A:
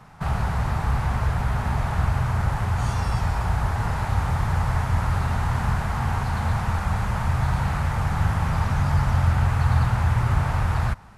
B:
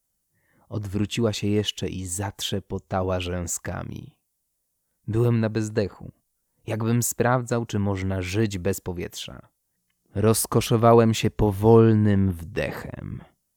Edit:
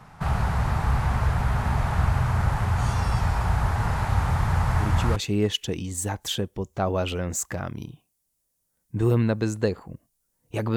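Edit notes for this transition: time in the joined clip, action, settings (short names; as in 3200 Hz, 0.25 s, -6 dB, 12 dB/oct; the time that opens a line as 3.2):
A
4.69 add B from 0.83 s 0.47 s -7 dB
5.16 switch to B from 1.3 s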